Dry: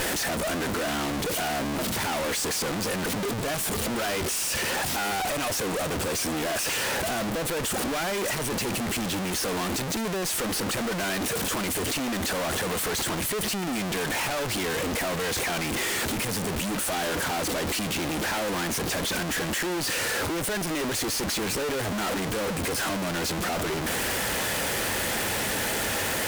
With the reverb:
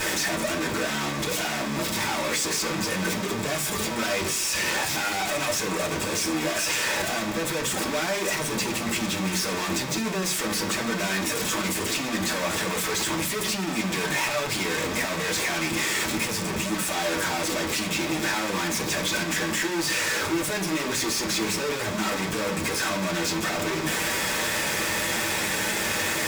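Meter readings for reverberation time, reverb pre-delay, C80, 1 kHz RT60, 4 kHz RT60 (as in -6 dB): 0.45 s, 3 ms, 16.5 dB, 0.40 s, 0.45 s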